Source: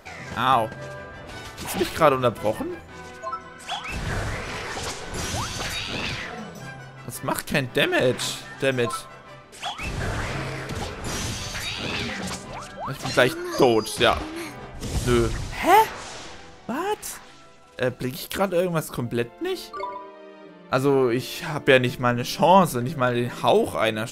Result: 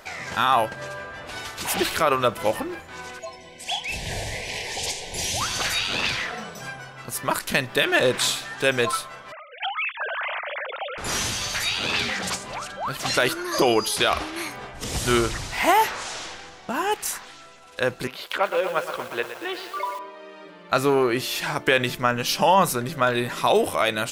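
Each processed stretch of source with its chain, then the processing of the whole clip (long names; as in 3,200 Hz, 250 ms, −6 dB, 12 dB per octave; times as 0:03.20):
0:03.19–0:05.41: Butterworth band-reject 1,300 Hz, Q 1.1 + dynamic equaliser 280 Hz, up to −5 dB, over −47 dBFS, Q 1.2
0:09.32–0:10.98: three sine waves on the formant tracks + downward compressor, threshold −28 dBFS
0:18.07–0:19.99: three-way crossover with the lows and the highs turned down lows −17 dB, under 390 Hz, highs −19 dB, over 3,800 Hz + feedback echo at a low word length 118 ms, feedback 80%, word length 7 bits, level −10 dB
whole clip: low-shelf EQ 480 Hz −10 dB; boost into a limiter +12.5 dB; level −7 dB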